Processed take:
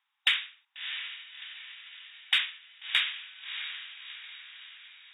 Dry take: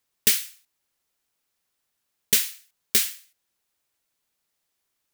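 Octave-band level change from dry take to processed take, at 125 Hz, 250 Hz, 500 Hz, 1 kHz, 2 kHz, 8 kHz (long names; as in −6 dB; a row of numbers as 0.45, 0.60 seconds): below −25 dB, below −30 dB, below −25 dB, +5.5 dB, +5.5 dB, −30.0 dB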